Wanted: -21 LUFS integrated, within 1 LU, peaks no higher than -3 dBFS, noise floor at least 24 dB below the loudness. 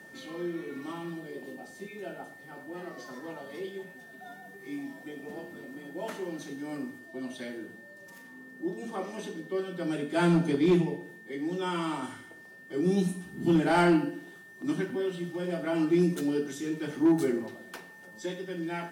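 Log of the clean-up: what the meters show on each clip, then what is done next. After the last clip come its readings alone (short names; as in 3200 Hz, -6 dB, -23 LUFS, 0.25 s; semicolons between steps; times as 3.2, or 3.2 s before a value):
clipped 0.3%; flat tops at -17.0 dBFS; steady tone 1800 Hz; tone level -49 dBFS; loudness -31.0 LUFS; peak -17.0 dBFS; loudness target -21.0 LUFS
-> clip repair -17 dBFS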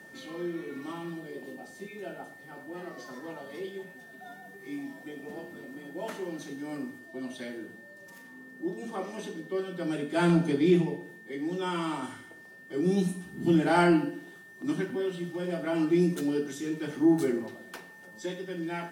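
clipped 0.0%; steady tone 1800 Hz; tone level -49 dBFS
-> notch 1800 Hz, Q 30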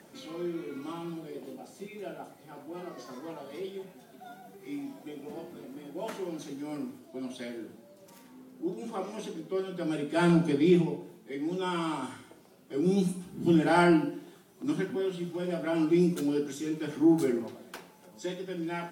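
steady tone none; loudness -30.5 LUFS; peak -11.5 dBFS; loudness target -21.0 LUFS
-> gain +9.5 dB; limiter -3 dBFS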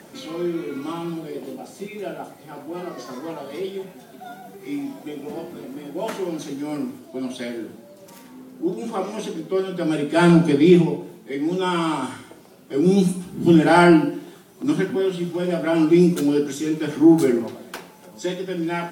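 loudness -21.0 LUFS; peak -3.0 dBFS; noise floor -47 dBFS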